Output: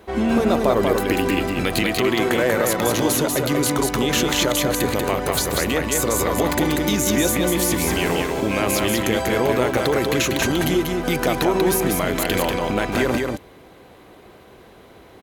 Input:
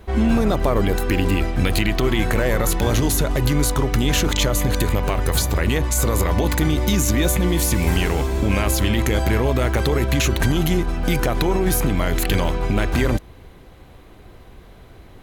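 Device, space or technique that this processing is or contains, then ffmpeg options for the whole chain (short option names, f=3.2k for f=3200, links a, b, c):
filter by subtraction: -filter_complex "[0:a]asettb=1/sr,asplit=3[a][b][c];[a]atrim=end=1.824[d];[b]atrim=start=1.82:end=3.78,asetpts=PTS-STARTPTS,afade=t=in:d=0.004:c=qsin,afade=t=out:st=1.956:d=0.004:c=qsin,highpass=89[e];[c]atrim=start=3.776[f];[d][e]acrossfade=d=0.004:c1=hsin:c2=qsin[g];[g][f]acrossfade=d=0.004:c1=qsin:c2=hsin,aecho=1:1:190:0.668,asplit=2[h][i];[i]lowpass=410,volume=-1[j];[h][j]amix=inputs=2:normalize=0"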